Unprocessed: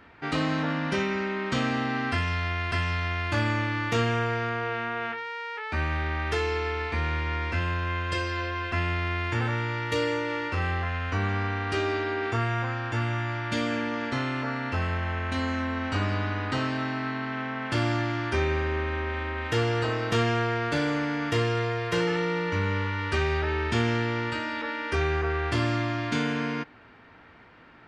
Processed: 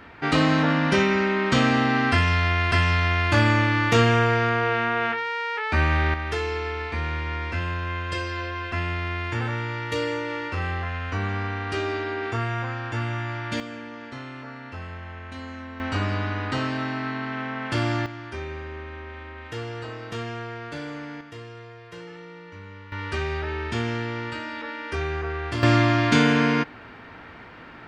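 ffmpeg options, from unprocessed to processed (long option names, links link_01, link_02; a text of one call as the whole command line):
ffmpeg -i in.wav -af "asetnsamples=nb_out_samples=441:pad=0,asendcmd='6.14 volume volume 0dB;13.6 volume volume -8.5dB;15.8 volume volume 1.5dB;18.06 volume volume -8dB;21.21 volume volume -15dB;22.92 volume volume -2dB;25.63 volume volume 9dB',volume=7dB" out.wav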